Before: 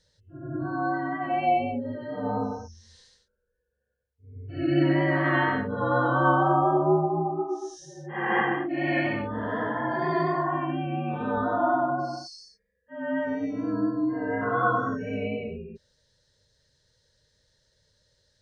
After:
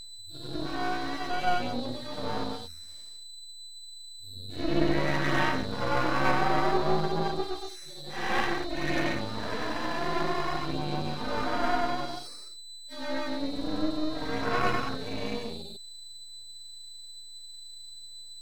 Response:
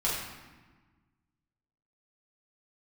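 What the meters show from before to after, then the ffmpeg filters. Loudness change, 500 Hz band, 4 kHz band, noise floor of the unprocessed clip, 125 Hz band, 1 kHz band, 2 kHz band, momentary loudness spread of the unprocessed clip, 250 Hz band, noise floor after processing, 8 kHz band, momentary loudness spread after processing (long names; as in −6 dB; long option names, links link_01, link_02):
−4.0 dB, −4.5 dB, +9.5 dB, −77 dBFS, −5.0 dB, −4.5 dB, −3.0 dB, 14 LU, −5.0 dB, −44 dBFS, can't be measured, 17 LU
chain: -af "aeval=exprs='val(0)+0.0112*sin(2*PI*4000*n/s)':channel_layout=same,aeval=exprs='max(val(0),0)':channel_layout=same,aphaser=in_gain=1:out_gain=1:delay=4.1:decay=0.24:speed=0.55:type=sinusoidal"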